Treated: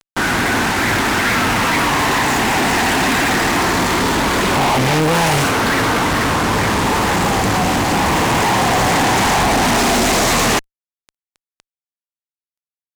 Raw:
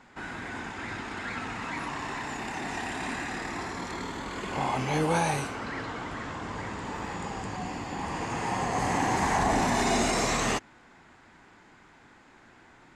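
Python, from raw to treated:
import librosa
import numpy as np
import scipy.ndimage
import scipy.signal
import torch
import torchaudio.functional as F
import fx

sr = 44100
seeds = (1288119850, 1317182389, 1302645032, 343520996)

y = fx.fuzz(x, sr, gain_db=46.0, gate_db=-44.0)
y = fx.doppler_dist(y, sr, depth_ms=0.26)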